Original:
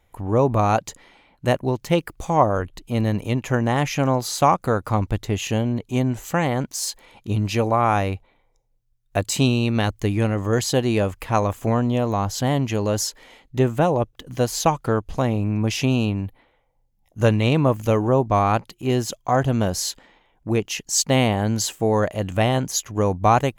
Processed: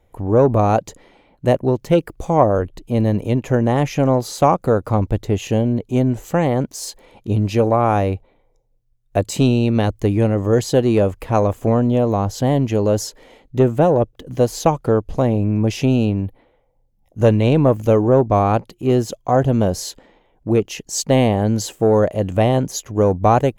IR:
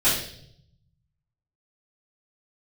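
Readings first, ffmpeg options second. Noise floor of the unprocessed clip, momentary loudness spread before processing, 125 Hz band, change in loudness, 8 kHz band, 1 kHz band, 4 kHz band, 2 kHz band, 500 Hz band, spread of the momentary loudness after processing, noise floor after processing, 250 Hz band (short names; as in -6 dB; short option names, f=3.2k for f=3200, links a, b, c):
-64 dBFS, 7 LU, +3.5 dB, +4.0 dB, -3.0 dB, +1.5 dB, -3.0 dB, -2.5 dB, +5.5 dB, 8 LU, -60 dBFS, +4.5 dB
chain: -filter_complex "[0:a]equalizer=f=510:t=o:w=1.3:g=4.5,acrossover=split=640[a][b];[a]acontrast=88[c];[c][b]amix=inputs=2:normalize=0,volume=-3dB"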